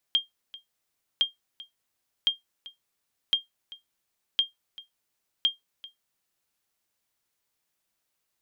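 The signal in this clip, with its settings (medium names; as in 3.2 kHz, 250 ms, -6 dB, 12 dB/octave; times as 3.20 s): sonar ping 3.21 kHz, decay 0.15 s, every 1.06 s, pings 6, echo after 0.39 s, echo -20 dB -14 dBFS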